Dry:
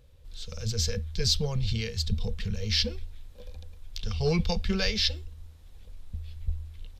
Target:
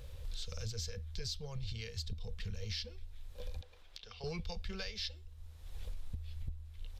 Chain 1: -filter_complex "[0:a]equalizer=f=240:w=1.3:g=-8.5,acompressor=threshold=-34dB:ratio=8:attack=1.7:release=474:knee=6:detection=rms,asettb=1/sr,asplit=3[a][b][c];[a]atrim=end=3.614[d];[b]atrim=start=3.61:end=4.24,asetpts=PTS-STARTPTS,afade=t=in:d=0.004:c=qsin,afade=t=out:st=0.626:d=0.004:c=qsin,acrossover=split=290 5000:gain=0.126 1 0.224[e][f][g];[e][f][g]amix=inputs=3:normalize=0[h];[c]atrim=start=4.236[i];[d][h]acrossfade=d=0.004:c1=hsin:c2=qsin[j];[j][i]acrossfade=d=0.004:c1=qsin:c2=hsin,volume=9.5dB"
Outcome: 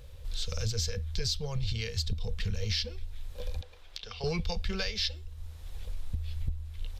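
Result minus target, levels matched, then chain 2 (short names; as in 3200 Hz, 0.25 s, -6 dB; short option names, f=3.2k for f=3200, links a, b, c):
compressor: peak gain reduction -9 dB
-filter_complex "[0:a]equalizer=f=240:w=1.3:g=-8.5,acompressor=threshold=-44.5dB:ratio=8:attack=1.7:release=474:knee=6:detection=rms,asettb=1/sr,asplit=3[a][b][c];[a]atrim=end=3.614[d];[b]atrim=start=3.61:end=4.24,asetpts=PTS-STARTPTS,afade=t=in:d=0.004:c=qsin,afade=t=out:st=0.626:d=0.004:c=qsin,acrossover=split=290 5000:gain=0.126 1 0.224[e][f][g];[e][f][g]amix=inputs=3:normalize=0[h];[c]atrim=start=4.236[i];[d][h]acrossfade=d=0.004:c1=hsin:c2=qsin[j];[j][i]acrossfade=d=0.004:c1=qsin:c2=hsin,volume=9.5dB"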